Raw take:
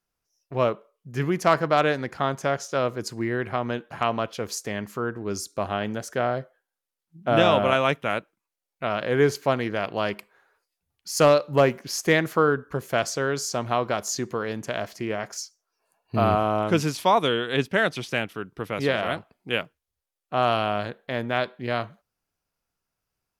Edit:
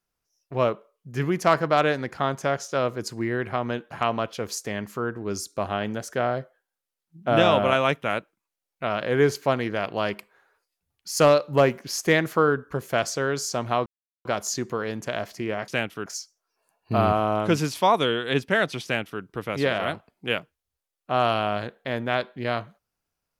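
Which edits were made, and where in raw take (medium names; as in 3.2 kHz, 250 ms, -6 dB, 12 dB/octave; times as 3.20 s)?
13.86 s: insert silence 0.39 s
18.07–18.45 s: copy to 15.29 s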